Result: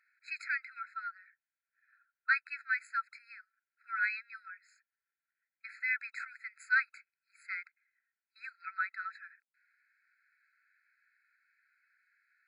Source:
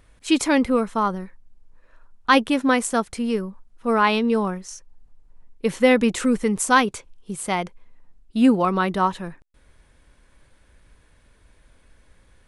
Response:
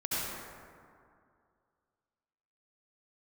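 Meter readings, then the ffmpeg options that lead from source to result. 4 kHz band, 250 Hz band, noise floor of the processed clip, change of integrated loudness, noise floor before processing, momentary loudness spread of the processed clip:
-25.5 dB, under -40 dB, under -85 dBFS, -14.5 dB, -57 dBFS, 21 LU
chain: -af "lowpass=2k,afftfilt=real='re*eq(mod(floor(b*sr/1024/1300),2),1)':imag='im*eq(mod(floor(b*sr/1024/1300),2),1)':win_size=1024:overlap=0.75,volume=-4dB"

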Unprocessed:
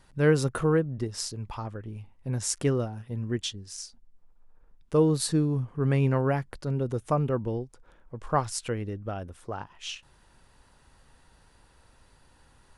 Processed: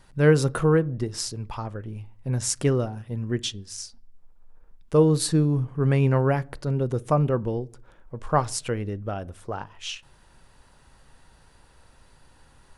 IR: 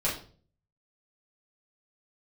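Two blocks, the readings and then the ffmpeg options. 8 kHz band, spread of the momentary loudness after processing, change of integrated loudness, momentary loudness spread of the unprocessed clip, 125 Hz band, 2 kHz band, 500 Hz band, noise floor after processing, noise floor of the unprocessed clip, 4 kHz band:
+3.0 dB, 16 LU, +4.0 dB, 16 LU, +4.5 dB, +3.5 dB, +4.0 dB, -56 dBFS, -61 dBFS, +3.0 dB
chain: -filter_complex "[0:a]asplit=2[a][b];[1:a]atrim=start_sample=2205,highshelf=f=2.2k:g=-11[c];[b][c]afir=irnorm=-1:irlink=0,volume=-24.5dB[d];[a][d]amix=inputs=2:normalize=0,volume=3dB"

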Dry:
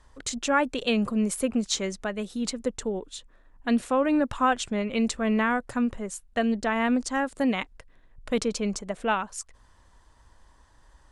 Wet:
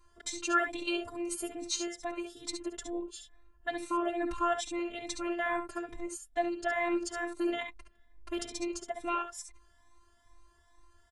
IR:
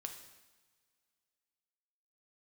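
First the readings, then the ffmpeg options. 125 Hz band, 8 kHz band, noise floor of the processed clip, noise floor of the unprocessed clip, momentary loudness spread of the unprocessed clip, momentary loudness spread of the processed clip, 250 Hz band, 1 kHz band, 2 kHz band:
under -20 dB, -5.5 dB, -65 dBFS, -59 dBFS, 10 LU, 10 LU, -10.5 dB, -6.0 dB, -5.5 dB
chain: -filter_complex "[0:a]aecho=1:1:58|69:0.158|0.422,afftfilt=real='hypot(re,im)*cos(PI*b)':imag='0':win_size=512:overlap=0.75,asplit=2[a][b];[b]adelay=3.3,afreqshift=2.3[c];[a][c]amix=inputs=2:normalize=1"

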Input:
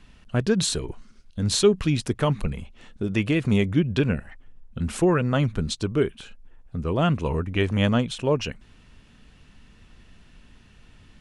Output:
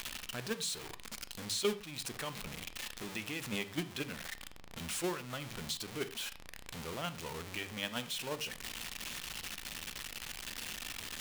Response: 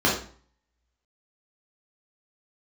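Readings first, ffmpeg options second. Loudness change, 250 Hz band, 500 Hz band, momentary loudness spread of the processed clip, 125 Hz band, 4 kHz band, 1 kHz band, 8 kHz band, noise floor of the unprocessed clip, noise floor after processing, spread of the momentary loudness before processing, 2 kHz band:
-15.5 dB, -19.5 dB, -16.5 dB, 7 LU, -23.0 dB, -6.5 dB, -12.5 dB, -6.5 dB, -53 dBFS, -51 dBFS, 12 LU, -8.0 dB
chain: -filter_complex "[0:a]aeval=exprs='val(0)+0.5*0.0841*sgn(val(0))':c=same,agate=range=-20dB:threshold=-14dB:ratio=16:detection=peak,tiltshelf=f=770:g=-8.5,acompressor=threshold=-43dB:ratio=2.5,asplit=2[a][b];[1:a]atrim=start_sample=2205,atrim=end_sample=3969,asetrate=32634,aresample=44100[c];[b][c]afir=irnorm=-1:irlink=0,volume=-28.5dB[d];[a][d]amix=inputs=2:normalize=0,volume=4dB"

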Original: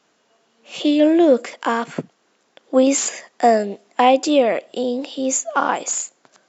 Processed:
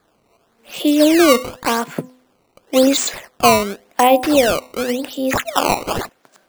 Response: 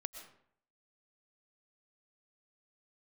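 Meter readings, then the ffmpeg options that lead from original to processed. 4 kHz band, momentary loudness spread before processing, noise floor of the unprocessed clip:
+7.0 dB, 10 LU, -64 dBFS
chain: -af "bandreject=f=253.9:t=h:w=4,bandreject=f=507.8:t=h:w=4,bandreject=f=761.7:t=h:w=4,bandreject=f=1.0156k:t=h:w=4,acrusher=samples=15:mix=1:aa=0.000001:lfo=1:lforange=24:lforate=0.91,volume=2dB"

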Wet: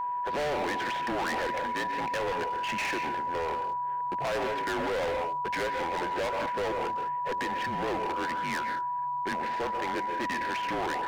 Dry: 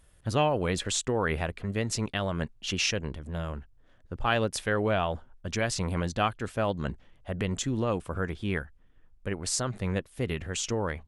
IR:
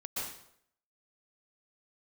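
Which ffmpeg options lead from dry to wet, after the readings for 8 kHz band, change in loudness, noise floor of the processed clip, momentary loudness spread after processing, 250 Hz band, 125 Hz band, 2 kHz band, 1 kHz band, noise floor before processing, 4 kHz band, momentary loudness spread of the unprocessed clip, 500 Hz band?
-13.0 dB, -0.5 dB, -32 dBFS, 2 LU, -5.0 dB, -15.0 dB, +2.0 dB, +7.0 dB, -59 dBFS, -4.5 dB, 9 LU, -1.0 dB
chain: -filter_complex "[0:a]afreqshift=-160,equalizer=f=500:t=o:w=0.33:g=6,equalizer=f=800:t=o:w=0.33:g=-5,equalizer=f=1.25k:t=o:w=0.33:g=-5,asplit=2[a][b];[1:a]atrim=start_sample=2205,afade=t=out:st=0.26:d=0.01,atrim=end_sample=11907[c];[b][c]afir=irnorm=-1:irlink=0,volume=-12.5dB[d];[a][d]amix=inputs=2:normalize=0,asplit=2[e][f];[f]highpass=f=720:p=1,volume=20dB,asoftclip=type=tanh:threshold=-9.5dB[g];[e][g]amix=inputs=2:normalize=0,lowpass=f=1.1k:p=1,volume=-6dB,highpass=280,equalizer=f=290:t=q:w=4:g=-6,equalizer=f=450:t=q:w=4:g=-4,equalizer=f=810:t=q:w=4:g=7,equalizer=f=1.2k:t=q:w=4:g=-8,equalizer=f=1.8k:t=q:w=4:g=6,lowpass=f=2.4k:w=0.5412,lowpass=f=2.4k:w=1.3066,asplit=2[h][i];[i]acompressor=threshold=-33dB:ratio=6,volume=-2dB[j];[h][j]amix=inputs=2:normalize=0,aeval=exprs='val(0)+0.0398*sin(2*PI*980*n/s)':c=same,asoftclip=type=hard:threshold=-27dB,volume=-1dB"

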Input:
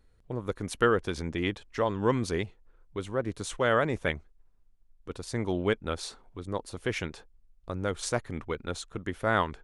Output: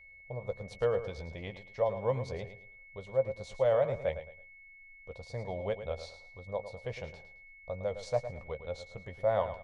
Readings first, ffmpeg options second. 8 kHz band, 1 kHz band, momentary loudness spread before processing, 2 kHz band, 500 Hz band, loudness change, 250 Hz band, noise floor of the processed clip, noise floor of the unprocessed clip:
under -15 dB, -7.5 dB, 14 LU, -12.0 dB, -1.0 dB, -3.5 dB, -15.0 dB, -55 dBFS, -62 dBFS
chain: -filter_complex "[0:a]firequalizer=gain_entry='entry(130,0);entry(310,-19);entry(540,9);entry(1400,-14);entry(2100,-8);entry(3000,-9);entry(4200,-4);entry(9200,-19)':delay=0.05:min_phase=1,aeval=exprs='val(0)+0.00355*sin(2*PI*2200*n/s)':c=same,asplit=2[a][b];[b]adelay=15,volume=-10.5dB[c];[a][c]amix=inputs=2:normalize=0,aecho=1:1:109|218|327:0.282|0.0817|0.0237,volume=-5.5dB"

